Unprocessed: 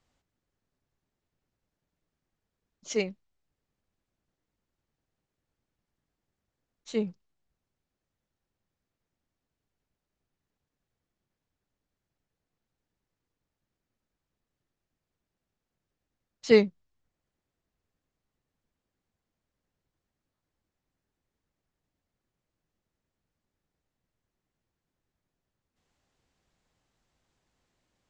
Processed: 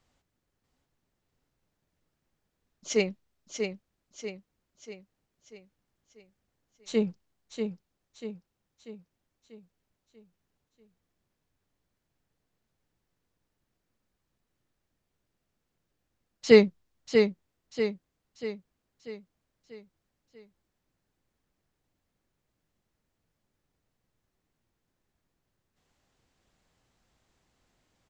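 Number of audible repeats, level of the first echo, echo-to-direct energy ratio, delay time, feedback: 5, -6.0 dB, -5.0 dB, 640 ms, 48%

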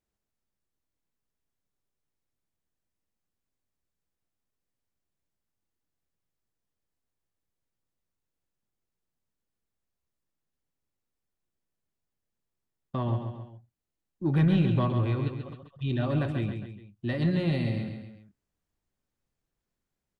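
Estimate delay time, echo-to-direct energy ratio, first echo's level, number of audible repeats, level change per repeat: 135 ms, -6.0 dB, -7.0 dB, 3, -6.0 dB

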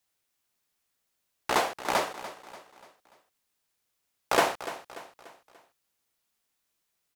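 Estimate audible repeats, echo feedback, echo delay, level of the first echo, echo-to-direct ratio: 4, 45%, 292 ms, -14.0 dB, -13.0 dB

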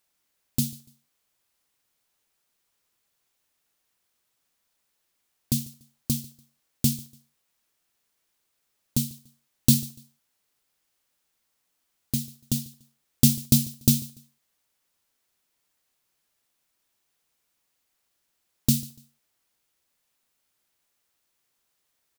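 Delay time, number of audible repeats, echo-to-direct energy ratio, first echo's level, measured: 145 ms, 2, -21.0 dB, -21.5 dB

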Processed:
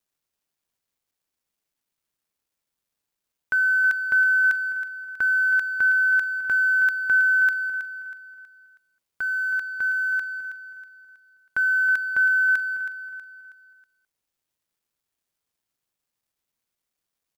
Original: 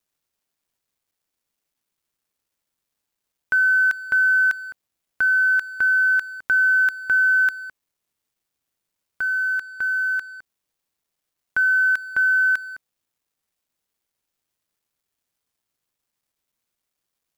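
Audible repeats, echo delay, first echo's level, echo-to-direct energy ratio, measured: 4, 321 ms, -10.5 dB, -9.5 dB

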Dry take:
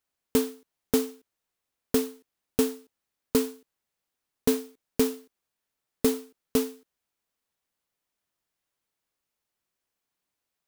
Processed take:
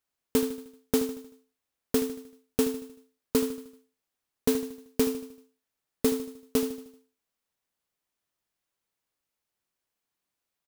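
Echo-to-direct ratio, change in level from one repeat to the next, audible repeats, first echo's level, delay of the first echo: -11.0 dB, -6.5 dB, 4, -12.0 dB, 77 ms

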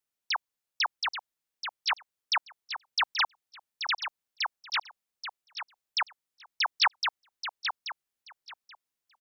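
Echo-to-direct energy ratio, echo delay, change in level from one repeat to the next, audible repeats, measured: -8.5 dB, 831 ms, -15.5 dB, 2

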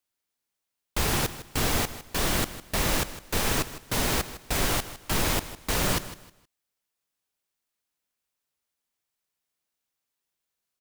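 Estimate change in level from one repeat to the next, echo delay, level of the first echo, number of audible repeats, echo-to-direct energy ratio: -11.5 dB, 157 ms, -14.5 dB, 2, -14.0 dB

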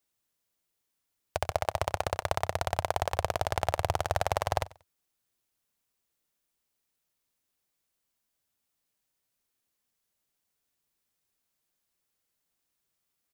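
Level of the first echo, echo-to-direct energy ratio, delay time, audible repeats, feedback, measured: -21.0 dB, -20.5 dB, 93 ms, 2, 26%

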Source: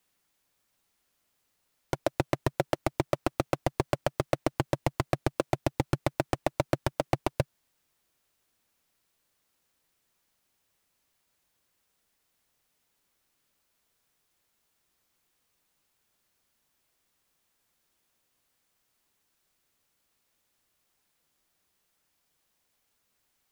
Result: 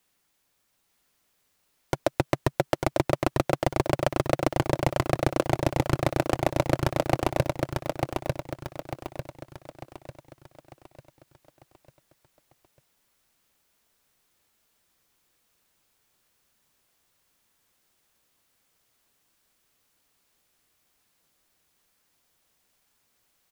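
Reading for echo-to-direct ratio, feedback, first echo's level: -3.0 dB, 44%, -4.0 dB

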